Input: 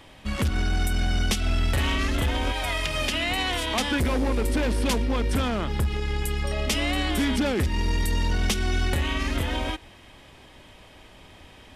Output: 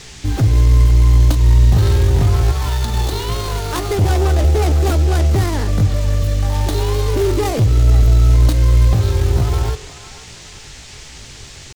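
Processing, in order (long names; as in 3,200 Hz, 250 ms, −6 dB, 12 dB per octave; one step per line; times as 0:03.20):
running median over 25 samples
feedback delay network reverb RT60 0.43 s, low-frequency decay 1.35×, high-frequency decay 0.6×, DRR 14 dB
in parallel at −5.5 dB: asymmetric clip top −33.5 dBFS
on the sum: low-shelf EQ 110 Hz +11 dB
feedback echo with a band-pass in the loop 496 ms, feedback 45%, band-pass 980 Hz, level −12 dB
pitch shifter +6 semitones
high-shelf EQ 4,100 Hz +12 dB
noise in a band 1,600–7,600 Hz −41 dBFS
level +1.5 dB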